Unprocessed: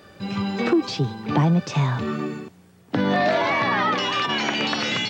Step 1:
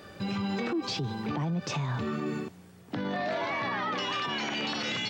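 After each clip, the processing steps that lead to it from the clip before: compressor, threshold -22 dBFS, peak gain reduction 7.5 dB; limiter -24 dBFS, peak gain reduction 11 dB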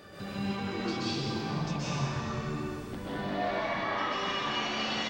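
compressor 6:1, threshold -37 dBFS, peak gain reduction 10 dB; frequency-shifting echo 0.443 s, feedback 58%, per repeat -87 Hz, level -17.5 dB; plate-style reverb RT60 2.2 s, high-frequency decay 0.9×, pre-delay 0.115 s, DRR -10 dB; gain -3 dB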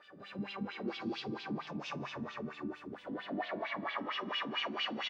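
doubler 44 ms -10.5 dB; wah 4.4 Hz 220–3300 Hz, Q 3.3; gain +2.5 dB

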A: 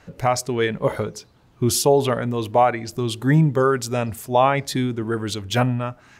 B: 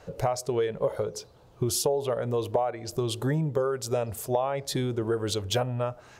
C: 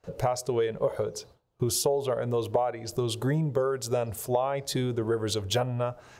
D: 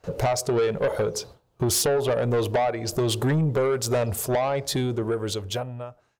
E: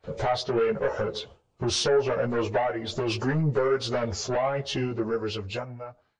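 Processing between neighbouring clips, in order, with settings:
graphic EQ 250/500/2000 Hz -8/+9/-6 dB; compressor 6:1, threshold -24 dBFS, peak gain reduction 16 dB
gate with hold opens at -43 dBFS
ending faded out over 2.05 s; soft clip -26.5 dBFS, distortion -10 dB; gain +8.5 dB
nonlinear frequency compression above 1700 Hz 1.5:1; dynamic EQ 1500 Hz, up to +4 dB, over -40 dBFS, Q 1.1; ensemble effect

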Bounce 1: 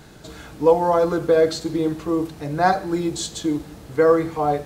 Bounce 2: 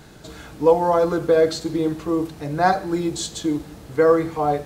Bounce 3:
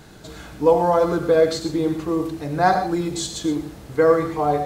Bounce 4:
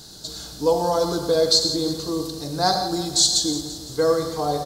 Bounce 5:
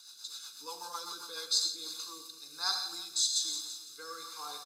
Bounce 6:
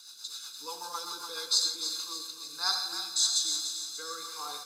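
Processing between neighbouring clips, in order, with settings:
nothing audible
non-linear reverb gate 0.14 s rising, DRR 7.5 dB
resonant high shelf 3200 Hz +11.5 dB, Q 3; bit-crush 12-bit; feedback echo 0.17 s, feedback 56%, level -13 dB; gain -3.5 dB
rotary speaker horn 8 Hz, later 1.2 Hz, at 1.03; HPF 1300 Hz 12 dB/oct; comb 0.8 ms, depth 92%; gain -8 dB
thinning echo 0.294 s, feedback 52%, high-pass 490 Hz, level -9 dB; gain +3 dB

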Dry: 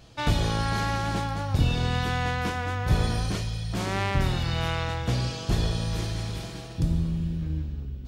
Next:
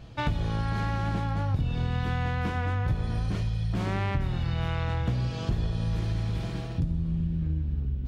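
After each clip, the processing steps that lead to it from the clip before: tone controls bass +6 dB, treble -10 dB; compressor 6:1, threshold -26 dBFS, peak gain reduction 14.5 dB; gain +1.5 dB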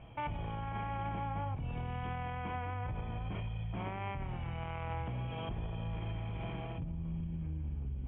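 limiter -24.5 dBFS, peak gain reduction 10.5 dB; rippled Chebyshev low-pass 3300 Hz, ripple 9 dB; gain +1.5 dB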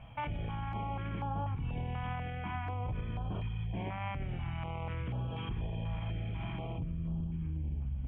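on a send at -19 dB: reverb RT60 3.8 s, pre-delay 80 ms; on the sum: stepped notch 4.1 Hz 380–2100 Hz; gain +2.5 dB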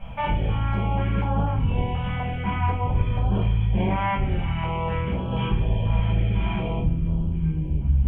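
shoebox room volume 39 m³, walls mixed, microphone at 1.2 m; gain +5 dB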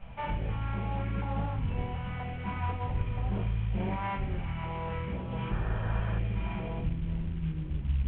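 CVSD 16 kbps; painted sound noise, 5.5–6.19, 300–1900 Hz -35 dBFS; gain -8.5 dB

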